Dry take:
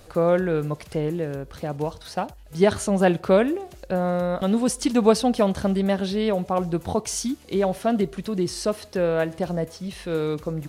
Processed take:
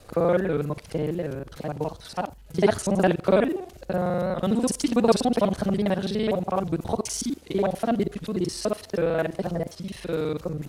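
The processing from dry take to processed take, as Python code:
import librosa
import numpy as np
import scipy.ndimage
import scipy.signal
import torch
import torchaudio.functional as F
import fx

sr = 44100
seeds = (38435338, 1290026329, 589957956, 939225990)

y = fx.local_reverse(x, sr, ms=41.0)
y = fx.record_warp(y, sr, rpm=78.0, depth_cents=100.0)
y = y * librosa.db_to_amplitude(-1.5)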